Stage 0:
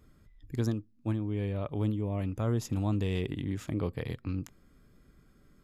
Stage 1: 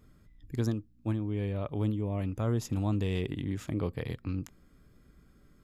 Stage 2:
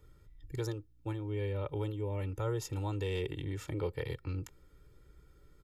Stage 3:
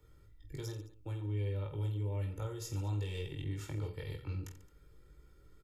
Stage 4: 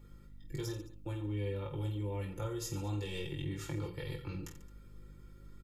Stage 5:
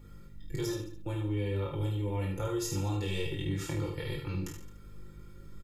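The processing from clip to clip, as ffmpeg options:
ffmpeg -i in.wav -af "aeval=exprs='val(0)+0.000562*(sin(2*PI*60*n/s)+sin(2*PI*2*60*n/s)/2+sin(2*PI*3*60*n/s)/3+sin(2*PI*4*60*n/s)/4+sin(2*PI*5*60*n/s)/5)':channel_layout=same" out.wav
ffmpeg -i in.wav -filter_complex "[0:a]aecho=1:1:2.2:0.95,acrossover=split=370|800[link_01][link_02][link_03];[link_01]alimiter=level_in=3.5dB:limit=-24dB:level=0:latency=1:release=412,volume=-3.5dB[link_04];[link_04][link_02][link_03]amix=inputs=3:normalize=0,volume=-3.5dB" out.wav
ffmpeg -i in.wav -filter_complex "[0:a]acrossover=split=150|3000[link_01][link_02][link_03];[link_02]acompressor=threshold=-42dB:ratio=6[link_04];[link_01][link_04][link_03]amix=inputs=3:normalize=0,asplit=2[link_05][link_06];[link_06]aecho=0:1:20|48|87.2|142.1|218.9:0.631|0.398|0.251|0.158|0.1[link_07];[link_05][link_07]amix=inputs=2:normalize=0,volume=-3dB" out.wav
ffmpeg -i in.wav -af "aecho=1:1:5.8:0.65,aeval=exprs='val(0)+0.00158*(sin(2*PI*50*n/s)+sin(2*PI*2*50*n/s)/2+sin(2*PI*3*50*n/s)/3+sin(2*PI*4*50*n/s)/4+sin(2*PI*5*50*n/s)/5)':channel_layout=same,volume=2dB" out.wav
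ffmpeg -i in.wav -af "aecho=1:1:31|74:0.473|0.473,volume=4dB" out.wav

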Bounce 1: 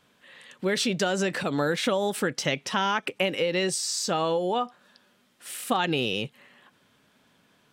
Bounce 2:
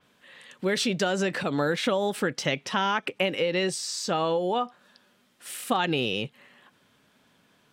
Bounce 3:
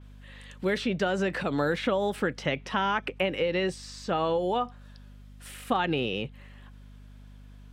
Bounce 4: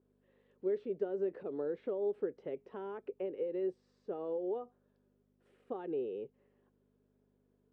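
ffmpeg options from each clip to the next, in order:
ffmpeg -i in.wav -af "adynamicequalizer=threshold=0.00631:dfrequency=5200:dqfactor=0.7:tfrequency=5200:tqfactor=0.7:attack=5:release=100:ratio=0.375:range=3:mode=cutabove:tftype=highshelf" out.wav
ffmpeg -i in.wav -filter_complex "[0:a]acrossover=split=800|3100[link_01][link_02][link_03];[link_03]acompressor=threshold=-46dB:ratio=6[link_04];[link_01][link_02][link_04]amix=inputs=3:normalize=0,aeval=exprs='val(0)+0.00501*(sin(2*PI*50*n/s)+sin(2*PI*2*50*n/s)/2+sin(2*PI*3*50*n/s)/3+sin(2*PI*4*50*n/s)/4+sin(2*PI*5*50*n/s)/5)':channel_layout=same,volume=-1dB" out.wav
ffmpeg -i in.wav -af "bandpass=frequency=410:width_type=q:width=5.1:csg=0,volume=-2dB" out.wav

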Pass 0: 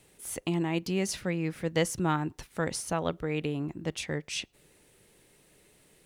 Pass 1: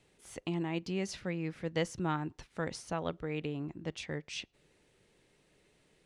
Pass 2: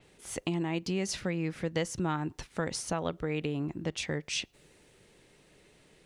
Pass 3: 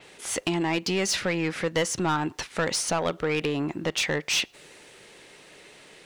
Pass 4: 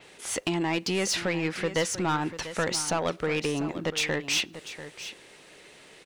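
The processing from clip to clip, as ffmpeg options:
ffmpeg -i in.wav -af "lowpass=6000,volume=-5.5dB" out.wav
ffmpeg -i in.wav -af "acompressor=threshold=-37dB:ratio=2.5,adynamicequalizer=threshold=0.00126:dfrequency=5700:dqfactor=0.7:tfrequency=5700:tqfactor=0.7:attack=5:release=100:ratio=0.375:range=3:mode=boostabove:tftype=highshelf,volume=7.5dB" out.wav
ffmpeg -i in.wav -filter_complex "[0:a]asplit=2[link_01][link_02];[link_02]highpass=frequency=720:poles=1,volume=18dB,asoftclip=type=tanh:threshold=-17dB[link_03];[link_01][link_03]amix=inputs=2:normalize=0,lowpass=frequency=6900:poles=1,volume=-6dB,volume=2dB" out.wav
ffmpeg -i in.wav -af "aecho=1:1:692:0.224,volume=-1.5dB" out.wav

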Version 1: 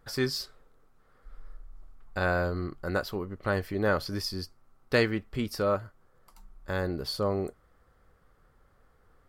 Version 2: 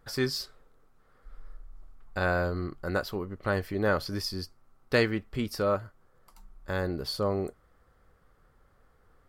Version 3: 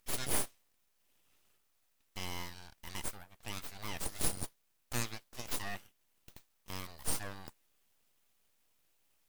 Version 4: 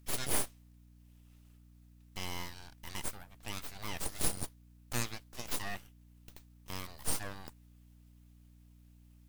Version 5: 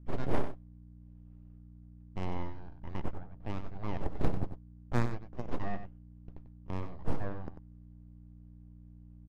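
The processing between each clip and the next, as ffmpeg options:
ffmpeg -i in.wav -af anull out.wav
ffmpeg -i in.wav -filter_complex "[0:a]aderivative,acrossover=split=160|3100[link_01][link_02][link_03];[link_02]alimiter=level_in=13dB:limit=-24dB:level=0:latency=1:release=16,volume=-13dB[link_04];[link_01][link_04][link_03]amix=inputs=3:normalize=0,aeval=exprs='abs(val(0))':channel_layout=same,volume=8dB" out.wav
ffmpeg -i in.wav -af "aeval=exprs='val(0)+0.00112*(sin(2*PI*60*n/s)+sin(2*PI*2*60*n/s)/2+sin(2*PI*3*60*n/s)/3+sin(2*PI*4*60*n/s)/4+sin(2*PI*5*60*n/s)/5)':channel_layout=same,volume=1dB" out.wav
ffmpeg -i in.wav -af "adynamicsmooth=sensitivity=1.5:basefreq=650,aecho=1:1:94:0.316,volume=8dB" out.wav

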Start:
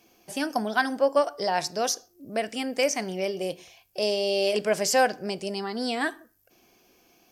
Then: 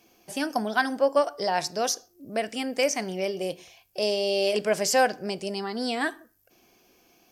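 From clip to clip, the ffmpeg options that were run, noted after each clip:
ffmpeg -i in.wav -af anull out.wav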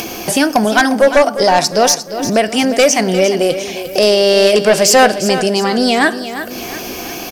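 ffmpeg -i in.wav -af "acompressor=mode=upward:threshold=-25dB:ratio=2.5,aeval=exprs='0.355*sin(PI/2*2.24*val(0)/0.355)':channel_layout=same,aecho=1:1:352|704|1056|1408|1760:0.266|0.125|0.0588|0.0276|0.013,volume=5dB" out.wav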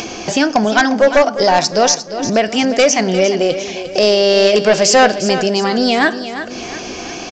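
ffmpeg -i in.wav -af "aresample=16000,aresample=44100,volume=-1dB" out.wav

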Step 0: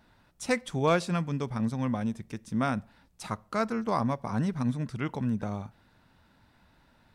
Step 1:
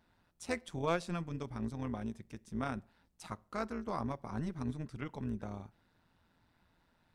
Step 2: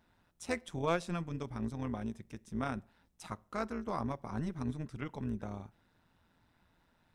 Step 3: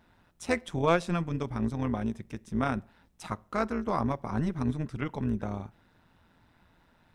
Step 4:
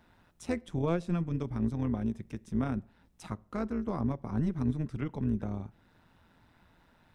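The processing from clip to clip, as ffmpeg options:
ffmpeg -i in.wav -af "tremolo=f=170:d=0.621,volume=-6.5dB" out.wav
ffmpeg -i in.wav -af "bandreject=frequency=4500:width=13,volume=1dB" out.wav
ffmpeg -i in.wav -af "bass=frequency=250:gain=0,treble=frequency=4000:gain=-4,volume=7.5dB" out.wav
ffmpeg -i in.wav -filter_complex "[0:a]acrossover=split=420[link_01][link_02];[link_02]acompressor=threshold=-58dB:ratio=1.5[link_03];[link_01][link_03]amix=inputs=2:normalize=0" out.wav

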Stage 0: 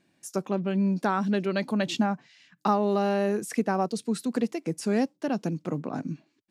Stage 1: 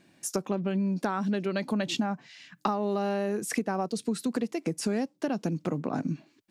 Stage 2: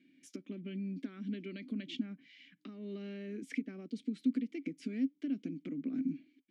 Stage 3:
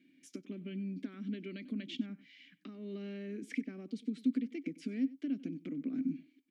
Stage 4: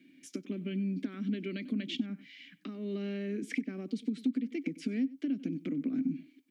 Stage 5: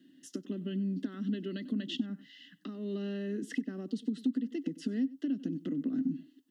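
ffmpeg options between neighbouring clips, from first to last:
ffmpeg -i in.wav -af "acompressor=threshold=-33dB:ratio=6,volume=7dB" out.wav
ffmpeg -i in.wav -filter_complex "[0:a]alimiter=limit=-21dB:level=0:latency=1:release=297,asplit=3[link_01][link_02][link_03];[link_01]bandpass=frequency=270:width_type=q:width=8,volume=0dB[link_04];[link_02]bandpass=frequency=2290:width_type=q:width=8,volume=-6dB[link_05];[link_03]bandpass=frequency=3010:width_type=q:width=8,volume=-9dB[link_06];[link_04][link_05][link_06]amix=inputs=3:normalize=0,volume=3.5dB" out.wav
ffmpeg -i in.wav -af "aecho=1:1:95:0.106" out.wav
ffmpeg -i in.wav -filter_complex "[0:a]acrossover=split=170[link_01][link_02];[link_02]acompressor=threshold=-37dB:ratio=6[link_03];[link_01][link_03]amix=inputs=2:normalize=0,volume=6.5dB" out.wav
ffmpeg -i in.wav -af "asuperstop=centerf=2300:order=8:qfactor=4.1" out.wav

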